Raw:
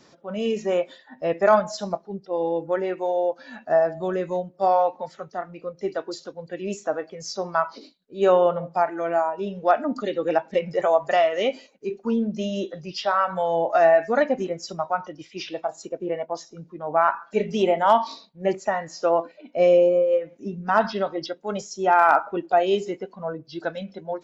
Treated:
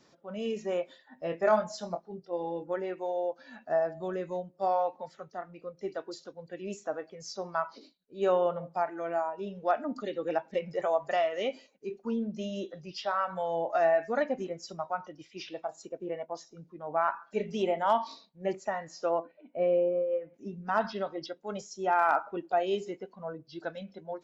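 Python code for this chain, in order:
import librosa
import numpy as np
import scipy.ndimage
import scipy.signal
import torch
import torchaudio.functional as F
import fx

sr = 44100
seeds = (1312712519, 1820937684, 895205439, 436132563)

y = fx.doubler(x, sr, ms=23.0, db=-7.0, at=(1.23, 2.74))
y = fx.air_absorb(y, sr, metres=470.0, at=(19.19, 20.34))
y = y * 10.0 ** (-8.5 / 20.0)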